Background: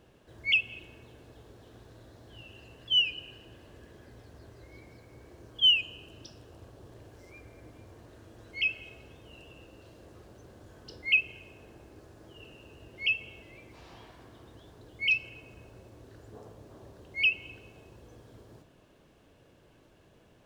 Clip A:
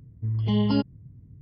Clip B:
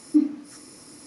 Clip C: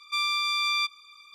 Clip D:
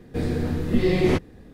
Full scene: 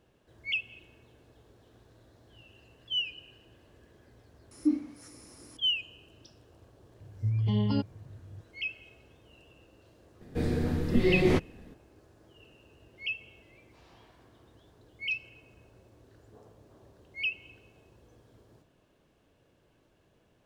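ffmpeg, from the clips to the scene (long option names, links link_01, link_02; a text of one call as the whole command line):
ffmpeg -i bed.wav -i cue0.wav -i cue1.wav -i cue2.wav -i cue3.wav -filter_complex "[0:a]volume=-6.5dB[link_01];[1:a]equalizer=frequency=99:width=6.7:gain=14[link_02];[2:a]atrim=end=1.06,asetpts=PTS-STARTPTS,volume=-7dB,afade=type=in:duration=0.004:curve=hsin,afade=type=out:start_time=1.056:duration=0.004:curve=hsin,adelay=4510[link_03];[link_02]atrim=end=1.41,asetpts=PTS-STARTPTS,volume=-6.5dB,afade=type=in:duration=0.004:curve=hsin,afade=type=out:start_time=1.406:duration=0.004:curve=hsin,adelay=7000[link_04];[4:a]atrim=end=1.53,asetpts=PTS-STARTPTS,volume=-4dB,afade=type=in:duration=0.004:curve=hsin,afade=type=out:start_time=1.526:duration=0.004:curve=hsin,adelay=10210[link_05];[link_01][link_03][link_04][link_05]amix=inputs=4:normalize=0" out.wav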